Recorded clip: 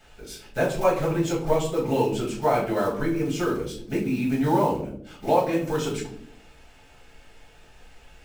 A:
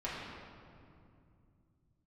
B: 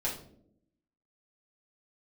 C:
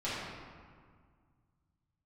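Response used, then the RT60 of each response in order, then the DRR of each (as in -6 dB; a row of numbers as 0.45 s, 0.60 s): B; 2.5 s, no single decay rate, 1.9 s; -9.5 dB, -7.0 dB, -12.0 dB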